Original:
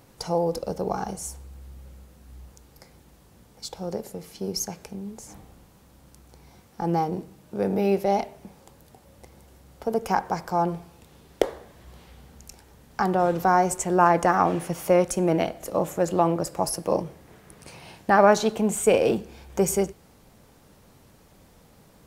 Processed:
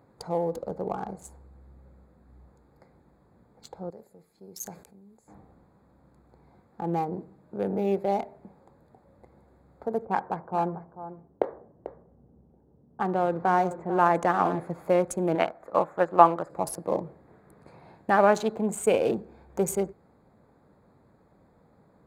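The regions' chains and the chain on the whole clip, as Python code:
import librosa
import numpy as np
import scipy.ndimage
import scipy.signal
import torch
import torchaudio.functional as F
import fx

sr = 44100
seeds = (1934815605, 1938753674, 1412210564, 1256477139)

y = fx.chain(x, sr, fx.pre_emphasis(coefficient=0.8),
    fx.sustainer(db_per_s=83.0), at=(3.9, 5.28))
y = fx.chain(y, sr, fx.env_lowpass(base_hz=400.0, full_db=-15.0),
    fx.highpass(hz=77.0, slope=12),
    fx.echo_single(ms=443, db=-12.5), at=(10.05, 14.6))
y = fx.chain(y, sr, fx.peak_eq(hz=1300.0, db=14.5, octaves=2.2),
    fx.upward_expand(threshold_db=-29.0, expansion=1.5), at=(15.35, 16.5))
y = fx.wiener(y, sr, points=15)
y = fx.highpass(y, sr, hz=120.0, slope=6)
y = fx.peak_eq(y, sr, hz=5400.0, db=-10.0, octaves=0.23)
y = y * librosa.db_to_amplitude(-3.0)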